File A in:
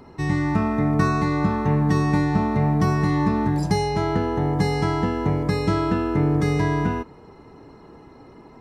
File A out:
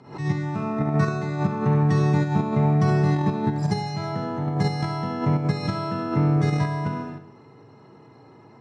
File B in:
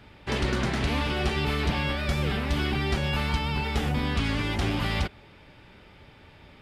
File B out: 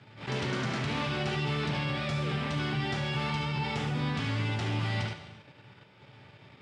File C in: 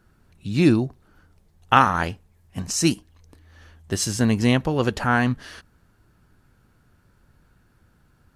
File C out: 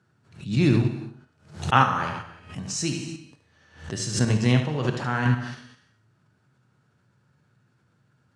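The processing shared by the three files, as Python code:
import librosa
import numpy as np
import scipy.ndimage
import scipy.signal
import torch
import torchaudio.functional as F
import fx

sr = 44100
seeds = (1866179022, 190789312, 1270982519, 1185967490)

p1 = scipy.signal.sosfilt(scipy.signal.butter(4, 94.0, 'highpass', fs=sr, output='sos'), x)
p2 = fx.peak_eq(p1, sr, hz=130.0, db=14.0, octaves=0.96)
p3 = fx.comb_fb(p2, sr, f0_hz=210.0, decay_s=0.84, harmonics='all', damping=0.0, mix_pct=50)
p4 = p3 + fx.echo_feedback(p3, sr, ms=73, feedback_pct=17, wet_db=-8.0, dry=0)
p5 = fx.rev_gated(p4, sr, seeds[0], gate_ms=380, shape='falling', drr_db=5.0)
p6 = fx.level_steps(p5, sr, step_db=17)
p7 = p5 + (p6 * 10.0 ** (2.5 / 20.0))
p8 = scipy.signal.sosfilt(scipy.signal.butter(4, 8400.0, 'lowpass', fs=sr, output='sos'), p7)
p9 = fx.low_shelf(p8, sr, hz=220.0, db=-10.0)
p10 = fx.pre_swell(p9, sr, db_per_s=130.0)
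y = p10 * 10.0 ** (-4.0 / 20.0)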